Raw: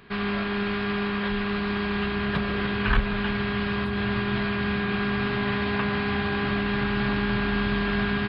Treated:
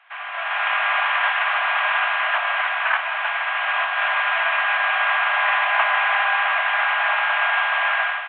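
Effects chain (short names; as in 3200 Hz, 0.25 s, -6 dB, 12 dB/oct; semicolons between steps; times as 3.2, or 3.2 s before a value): CVSD 16 kbps; AGC gain up to 14 dB; steep high-pass 620 Hz 96 dB/oct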